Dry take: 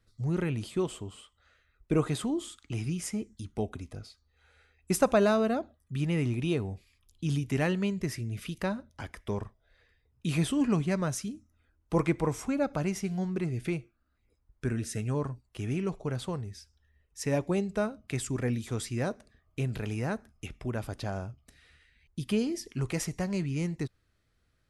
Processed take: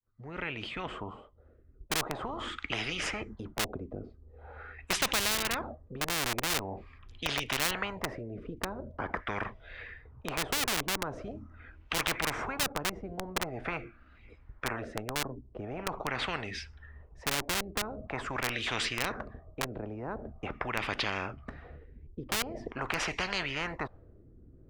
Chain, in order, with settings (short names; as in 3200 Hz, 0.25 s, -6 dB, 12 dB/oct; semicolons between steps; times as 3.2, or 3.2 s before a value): opening faded in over 2.80 s; LFO low-pass sine 0.44 Hz 320–2700 Hz; in parallel at -4.5 dB: Schmitt trigger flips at -22 dBFS; on the sum: spectral compressor 10:1; gain -2 dB